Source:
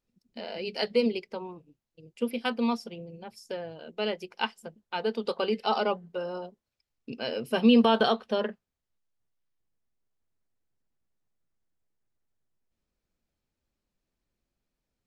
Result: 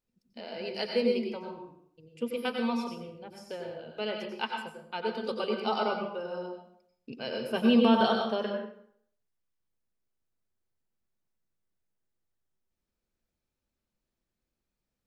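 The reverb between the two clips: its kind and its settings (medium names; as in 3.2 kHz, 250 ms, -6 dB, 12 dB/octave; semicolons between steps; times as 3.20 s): plate-style reverb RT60 0.64 s, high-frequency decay 0.75×, pre-delay 80 ms, DRR 2 dB; trim -4 dB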